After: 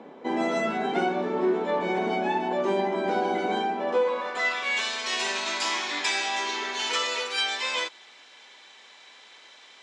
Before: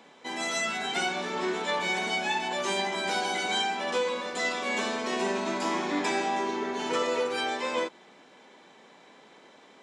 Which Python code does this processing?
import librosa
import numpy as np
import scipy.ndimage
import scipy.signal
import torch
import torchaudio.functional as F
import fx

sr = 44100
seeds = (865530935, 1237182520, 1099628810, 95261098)

y = fx.filter_sweep_bandpass(x, sr, from_hz=340.0, to_hz=4100.0, start_s=3.76, end_s=4.91, q=0.85)
y = fx.rider(y, sr, range_db=4, speed_s=0.5)
y = y * 10.0 ** (9.0 / 20.0)